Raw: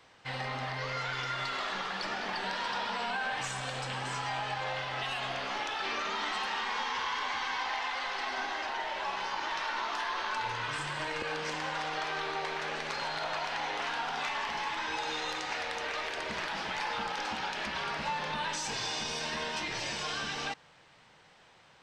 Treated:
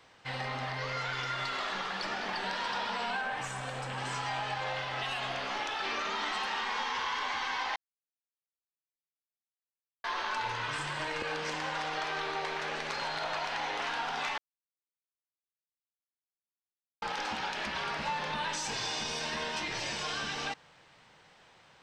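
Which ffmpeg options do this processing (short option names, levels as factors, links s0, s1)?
-filter_complex "[0:a]asettb=1/sr,asplit=3[s0][s1][s2];[s0]atrim=end=3.214[s3];[s1]atrim=start=3.21:end=3.98,asetpts=PTS-STARTPTS,afade=t=in:d=0.004:c=qsin,afade=t=out:st=0.766:d=0.004:c=qsin,equalizer=f=4400:t=o:w=1.6:g=-7[s4];[s2]atrim=start=3.976[s5];[s3][s4]acrossfade=d=0.004:c1=hsin:c2=qsin[s6];[s6][s5]acrossfade=d=0.004:c1=qsin:c2=hsin,asplit=5[s7][s8][s9][s10][s11];[s7]atrim=end=7.76,asetpts=PTS-STARTPTS,afade=t=out:st=7.756:d=0.004:c=hsin[s12];[s8]atrim=start=7.76:end=10.04,asetpts=PTS-STARTPTS,volume=0[s13];[s9]atrim=start=10.04:end=14.38,asetpts=PTS-STARTPTS,afade=t=in:d=0.004:c=hsin,afade=t=out:st=4.336:d=0.004:c=hsin[s14];[s10]atrim=start=14.38:end=17.02,asetpts=PTS-STARTPTS,volume=0[s15];[s11]atrim=start=17.02,asetpts=PTS-STARTPTS,afade=t=in:d=0.004:c=hsin[s16];[s12][s13][s14][s15][s16]concat=n=5:v=0:a=1"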